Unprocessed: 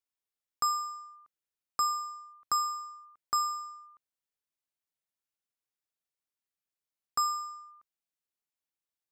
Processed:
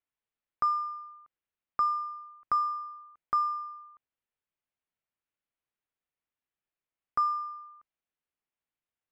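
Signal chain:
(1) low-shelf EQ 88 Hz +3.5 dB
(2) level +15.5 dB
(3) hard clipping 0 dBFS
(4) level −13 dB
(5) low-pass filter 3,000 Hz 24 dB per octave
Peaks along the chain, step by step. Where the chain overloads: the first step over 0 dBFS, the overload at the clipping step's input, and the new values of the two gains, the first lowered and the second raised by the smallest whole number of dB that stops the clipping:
−21.0, −5.5, −5.5, −18.5, −19.5 dBFS
no step passes full scale

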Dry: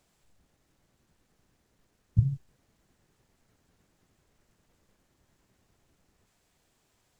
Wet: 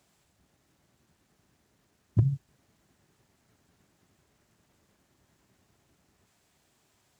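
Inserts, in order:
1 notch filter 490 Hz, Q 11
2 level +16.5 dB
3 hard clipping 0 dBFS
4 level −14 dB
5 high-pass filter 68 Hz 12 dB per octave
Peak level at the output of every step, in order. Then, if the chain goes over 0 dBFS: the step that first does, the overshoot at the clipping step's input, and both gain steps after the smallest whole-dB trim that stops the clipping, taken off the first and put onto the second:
−10.5, +6.0, 0.0, −14.0, −10.5 dBFS
step 2, 6.0 dB
step 2 +10.5 dB, step 4 −8 dB

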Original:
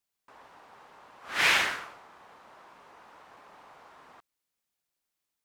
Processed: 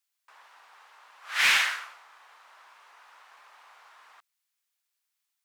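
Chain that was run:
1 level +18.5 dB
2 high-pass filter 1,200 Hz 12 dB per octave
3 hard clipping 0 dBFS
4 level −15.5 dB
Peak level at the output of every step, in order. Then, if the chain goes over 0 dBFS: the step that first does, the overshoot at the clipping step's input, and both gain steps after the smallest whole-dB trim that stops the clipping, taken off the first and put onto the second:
+6.5, +6.5, 0.0, −15.5 dBFS
step 1, 6.5 dB
step 1 +11.5 dB, step 4 −8.5 dB

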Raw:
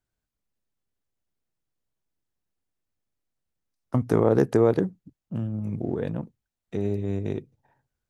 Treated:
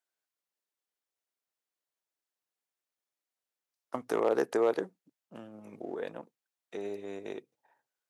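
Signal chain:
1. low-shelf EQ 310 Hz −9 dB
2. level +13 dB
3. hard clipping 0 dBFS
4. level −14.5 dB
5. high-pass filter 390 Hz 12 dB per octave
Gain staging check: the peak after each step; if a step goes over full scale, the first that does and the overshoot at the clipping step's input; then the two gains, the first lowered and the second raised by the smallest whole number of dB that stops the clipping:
−9.0, +4.0, 0.0, −14.5, −14.5 dBFS
step 2, 4.0 dB
step 2 +9 dB, step 4 −10.5 dB

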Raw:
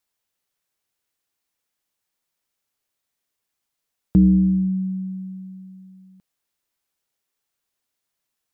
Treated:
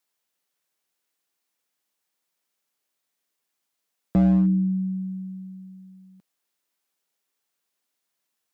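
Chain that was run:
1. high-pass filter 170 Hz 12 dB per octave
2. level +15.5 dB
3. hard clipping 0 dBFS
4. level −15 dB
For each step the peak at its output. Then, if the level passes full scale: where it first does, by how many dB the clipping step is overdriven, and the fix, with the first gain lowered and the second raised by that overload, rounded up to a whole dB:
−8.5, +7.0, 0.0, −15.0 dBFS
step 2, 7.0 dB
step 2 +8.5 dB, step 4 −8 dB

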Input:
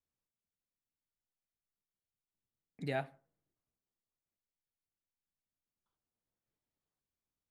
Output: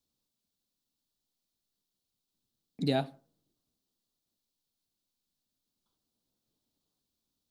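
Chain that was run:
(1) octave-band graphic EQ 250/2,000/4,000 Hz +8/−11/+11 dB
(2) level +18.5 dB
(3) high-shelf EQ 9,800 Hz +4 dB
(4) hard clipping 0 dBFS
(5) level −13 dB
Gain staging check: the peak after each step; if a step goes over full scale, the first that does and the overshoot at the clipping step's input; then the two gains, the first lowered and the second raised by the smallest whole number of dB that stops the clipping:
−21.0, −2.5, −2.5, −2.5, −15.5 dBFS
no step passes full scale

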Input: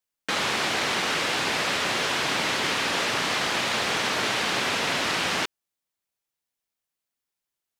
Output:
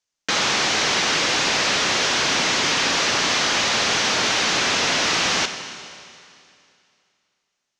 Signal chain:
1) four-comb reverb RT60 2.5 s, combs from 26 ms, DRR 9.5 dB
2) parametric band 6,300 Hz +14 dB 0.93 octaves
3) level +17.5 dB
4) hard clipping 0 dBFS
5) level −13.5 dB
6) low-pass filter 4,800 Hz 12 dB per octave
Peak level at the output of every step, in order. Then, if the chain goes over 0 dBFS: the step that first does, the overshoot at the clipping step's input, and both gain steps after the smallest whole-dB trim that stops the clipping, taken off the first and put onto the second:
−12.0, −8.0, +9.5, 0.0, −13.5, −12.5 dBFS
step 3, 9.5 dB
step 3 +7.5 dB, step 5 −3.5 dB

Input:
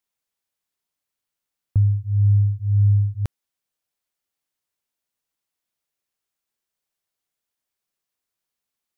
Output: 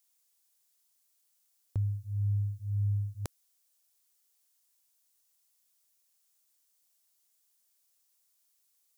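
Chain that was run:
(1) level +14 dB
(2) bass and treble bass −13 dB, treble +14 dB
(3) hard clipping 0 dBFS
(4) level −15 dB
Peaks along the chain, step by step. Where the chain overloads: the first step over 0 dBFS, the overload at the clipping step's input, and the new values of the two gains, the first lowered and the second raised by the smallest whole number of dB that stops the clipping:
+2.5, +7.0, 0.0, −15.0 dBFS
step 1, 7.0 dB
step 1 +7 dB, step 4 −8 dB

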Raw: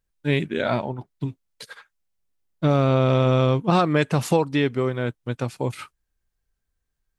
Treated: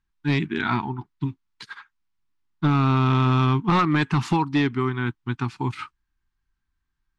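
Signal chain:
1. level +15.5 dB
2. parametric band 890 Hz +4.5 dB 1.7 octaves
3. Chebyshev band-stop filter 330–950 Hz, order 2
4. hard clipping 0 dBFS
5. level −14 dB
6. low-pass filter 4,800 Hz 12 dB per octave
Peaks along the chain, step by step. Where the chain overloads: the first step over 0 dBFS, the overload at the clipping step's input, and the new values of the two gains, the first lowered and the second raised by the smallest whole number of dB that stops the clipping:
+9.0, +10.5, +9.0, 0.0, −14.0, −13.5 dBFS
step 1, 9.0 dB
step 1 +6.5 dB, step 5 −5 dB

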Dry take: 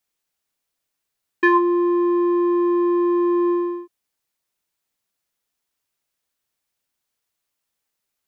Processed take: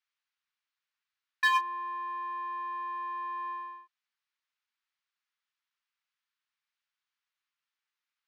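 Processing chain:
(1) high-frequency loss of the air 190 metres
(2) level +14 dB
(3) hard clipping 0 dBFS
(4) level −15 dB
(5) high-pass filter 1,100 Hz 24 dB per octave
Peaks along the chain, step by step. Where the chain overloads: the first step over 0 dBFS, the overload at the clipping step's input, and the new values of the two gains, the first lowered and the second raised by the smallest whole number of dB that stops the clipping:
−8.0, +6.0, 0.0, −15.0, −15.5 dBFS
step 2, 6.0 dB
step 2 +8 dB, step 4 −9 dB

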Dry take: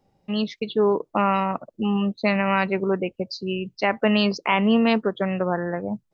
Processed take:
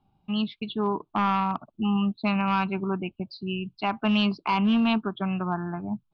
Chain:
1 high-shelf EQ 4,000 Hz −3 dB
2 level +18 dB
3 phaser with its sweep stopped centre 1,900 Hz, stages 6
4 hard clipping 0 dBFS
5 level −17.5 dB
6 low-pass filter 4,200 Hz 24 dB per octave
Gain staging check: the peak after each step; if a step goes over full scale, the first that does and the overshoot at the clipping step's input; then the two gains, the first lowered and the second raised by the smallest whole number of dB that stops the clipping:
−6.0, +12.0, +8.0, 0.0, −17.5, −16.0 dBFS
step 2, 8.0 dB
step 2 +10 dB, step 5 −9.5 dB

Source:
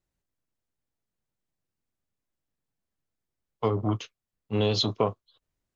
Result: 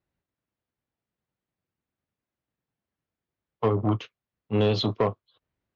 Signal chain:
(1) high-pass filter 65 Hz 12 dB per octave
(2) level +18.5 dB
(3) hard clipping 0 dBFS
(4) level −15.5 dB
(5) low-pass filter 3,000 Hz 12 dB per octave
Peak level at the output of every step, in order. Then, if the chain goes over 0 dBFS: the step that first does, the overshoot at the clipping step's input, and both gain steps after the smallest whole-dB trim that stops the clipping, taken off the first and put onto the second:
−12.0, +6.5, 0.0, −15.5, −15.0 dBFS
step 2, 6.5 dB
step 2 +11.5 dB, step 4 −8.5 dB

